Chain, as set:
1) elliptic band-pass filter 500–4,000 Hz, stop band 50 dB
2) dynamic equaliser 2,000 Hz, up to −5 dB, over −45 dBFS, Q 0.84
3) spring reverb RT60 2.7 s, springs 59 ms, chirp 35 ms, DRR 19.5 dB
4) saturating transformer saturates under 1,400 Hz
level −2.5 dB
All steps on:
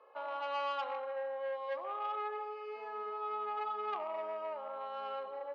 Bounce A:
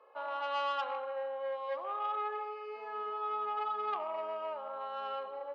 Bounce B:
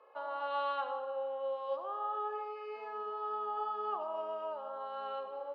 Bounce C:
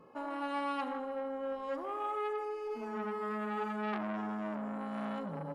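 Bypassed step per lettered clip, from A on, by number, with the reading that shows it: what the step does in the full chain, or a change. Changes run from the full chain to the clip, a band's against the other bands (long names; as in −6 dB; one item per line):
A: 2, 4 kHz band +2.0 dB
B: 4, 2 kHz band −4.0 dB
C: 1, 2 kHz band +4.0 dB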